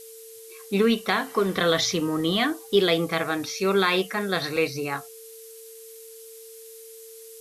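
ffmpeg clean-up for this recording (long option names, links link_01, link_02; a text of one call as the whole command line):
ffmpeg -i in.wav -af "bandreject=frequency=450:width=30,afftdn=noise_reduction=26:noise_floor=-44" out.wav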